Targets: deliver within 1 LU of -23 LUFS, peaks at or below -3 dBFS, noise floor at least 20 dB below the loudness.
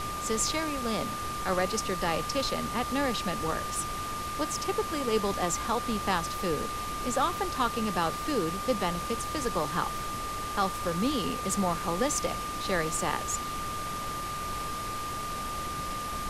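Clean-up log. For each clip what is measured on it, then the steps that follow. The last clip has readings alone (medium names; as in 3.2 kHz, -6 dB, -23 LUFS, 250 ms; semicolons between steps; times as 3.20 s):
steady tone 1.2 kHz; tone level -34 dBFS; noise floor -35 dBFS; noise floor target -51 dBFS; loudness -30.5 LUFS; peak level -14.0 dBFS; loudness target -23.0 LUFS
-> band-stop 1.2 kHz, Q 30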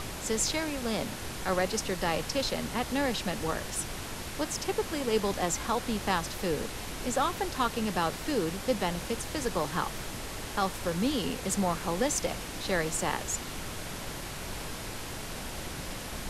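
steady tone not found; noise floor -39 dBFS; noise floor target -52 dBFS
-> noise print and reduce 13 dB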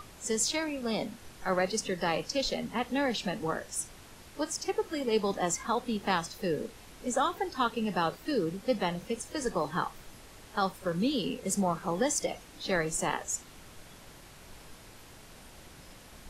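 noise floor -52 dBFS; loudness -31.5 LUFS; peak level -14.5 dBFS; loudness target -23.0 LUFS
-> trim +8.5 dB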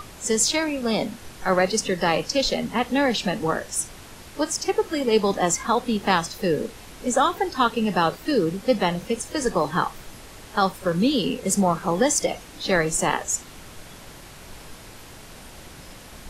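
loudness -23.0 LUFS; peak level -6.0 dBFS; noise floor -43 dBFS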